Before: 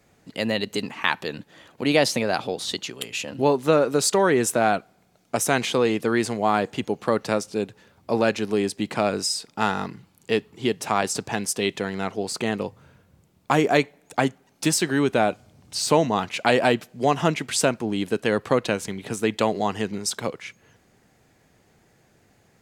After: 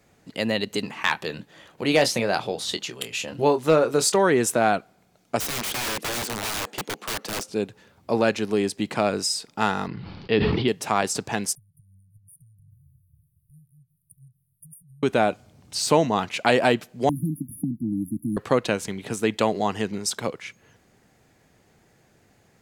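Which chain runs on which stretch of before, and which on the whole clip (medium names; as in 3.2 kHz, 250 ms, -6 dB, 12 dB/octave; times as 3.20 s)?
0.85–4.16 s: band-stop 260 Hz, Q 6.3 + doubling 25 ms -10.5 dB + hard clipper -8 dBFS
5.40–7.49 s: high-pass 210 Hz 24 dB/octave + integer overflow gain 23 dB
9.87–10.68 s: steep low-pass 5 kHz 72 dB/octave + bass shelf 69 Hz +11.5 dB + decay stretcher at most 26 dB/s
11.55–15.03 s: compression, threshold -35 dBFS + brick-wall FIR band-stop 160–9000 Hz
17.09–18.37 s: brick-wall FIR band-stop 330–9600 Hz + three bands compressed up and down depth 100%
whole clip: none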